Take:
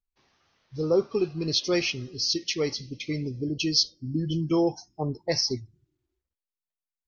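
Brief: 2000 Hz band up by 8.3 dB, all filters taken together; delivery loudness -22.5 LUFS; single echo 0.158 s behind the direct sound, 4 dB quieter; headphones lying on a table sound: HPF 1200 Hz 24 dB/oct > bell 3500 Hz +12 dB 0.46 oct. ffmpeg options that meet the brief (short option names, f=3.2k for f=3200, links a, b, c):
-af "highpass=f=1.2k:w=0.5412,highpass=f=1.2k:w=1.3066,equalizer=f=2k:t=o:g=8,equalizer=f=3.5k:t=o:w=0.46:g=12,aecho=1:1:158:0.631,volume=-0.5dB"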